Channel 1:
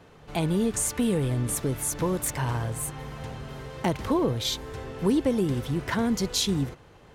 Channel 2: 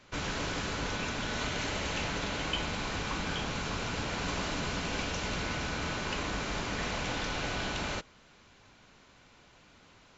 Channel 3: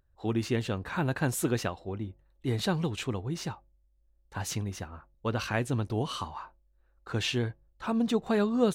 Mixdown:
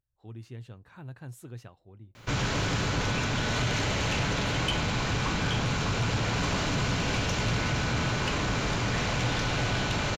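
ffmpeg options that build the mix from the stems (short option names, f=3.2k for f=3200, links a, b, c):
-filter_complex "[1:a]acontrast=64,acrusher=bits=10:mix=0:aa=0.000001,adelay=2150,volume=-0.5dB[a];[2:a]volume=-19dB[b];[a][b]amix=inputs=2:normalize=0,equalizer=f=120:w=2.6:g=11.5,asoftclip=type=tanh:threshold=-20dB"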